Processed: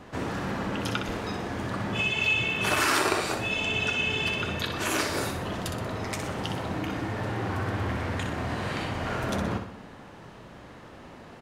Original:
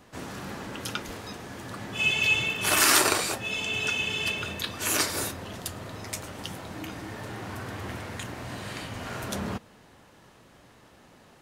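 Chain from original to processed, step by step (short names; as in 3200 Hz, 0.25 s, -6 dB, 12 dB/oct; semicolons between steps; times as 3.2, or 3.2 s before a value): LPF 2300 Hz 6 dB/oct; compressor 2:1, threshold -38 dBFS, peak gain reduction 10 dB; feedback echo 62 ms, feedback 50%, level -7 dB; gain +8.5 dB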